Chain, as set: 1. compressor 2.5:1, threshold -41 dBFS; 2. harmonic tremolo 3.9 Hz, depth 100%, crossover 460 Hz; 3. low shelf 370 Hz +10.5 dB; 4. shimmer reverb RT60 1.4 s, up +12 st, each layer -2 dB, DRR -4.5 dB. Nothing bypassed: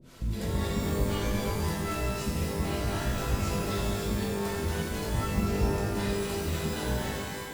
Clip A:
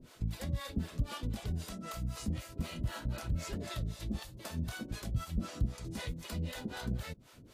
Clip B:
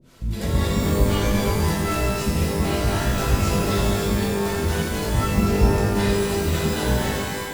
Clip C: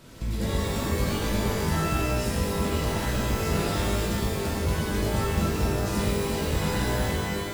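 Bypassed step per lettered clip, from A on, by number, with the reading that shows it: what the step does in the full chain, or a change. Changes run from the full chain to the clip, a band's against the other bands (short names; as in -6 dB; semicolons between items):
4, 500 Hz band -6.5 dB; 1, mean gain reduction 7.5 dB; 2, crest factor change -2.0 dB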